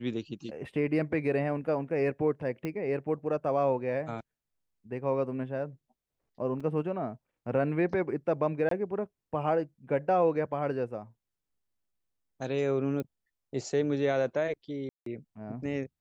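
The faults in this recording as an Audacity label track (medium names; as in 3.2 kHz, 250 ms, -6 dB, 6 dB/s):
2.650000	2.650000	pop -22 dBFS
6.600000	6.600000	dropout 4.6 ms
8.690000	8.710000	dropout 23 ms
13.000000	13.000000	pop -23 dBFS
14.890000	15.060000	dropout 173 ms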